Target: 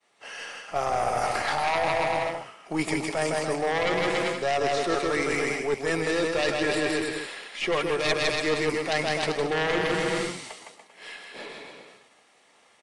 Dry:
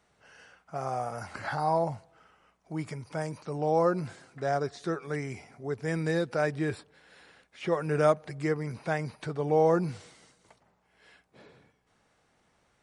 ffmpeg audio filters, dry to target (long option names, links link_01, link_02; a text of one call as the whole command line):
ffmpeg -i in.wav -filter_complex "[0:a]acrossover=split=240 3300:gain=0.0794 1 0.0794[link_01][link_02][link_03];[link_01][link_02][link_03]amix=inputs=3:normalize=0,aeval=exprs='0.266*sin(PI/2*3.55*val(0)/0.266)':channel_layout=same,aemphasis=mode=production:type=75fm,asplit=2[link_04][link_05];[link_05]aecho=0:1:160|288|390.4|472.3|537.9:0.631|0.398|0.251|0.158|0.1[link_06];[link_04][link_06]amix=inputs=2:normalize=0,crystalizer=i=3:c=0,agate=range=-33dB:threshold=-44dB:ratio=3:detection=peak,bandreject=frequency=1500:width=7,areverse,acompressor=threshold=-23dB:ratio=6,areverse,aeval=exprs='0.316*(cos(1*acos(clip(val(0)/0.316,-1,1)))-cos(1*PI/2))+0.0398*(cos(4*acos(clip(val(0)/0.316,-1,1)))-cos(4*PI/2))+0.00178*(cos(6*acos(clip(val(0)/0.316,-1,1)))-cos(6*PI/2))':channel_layout=same" -ar 22050 -c:a aac -b:a 48k out.aac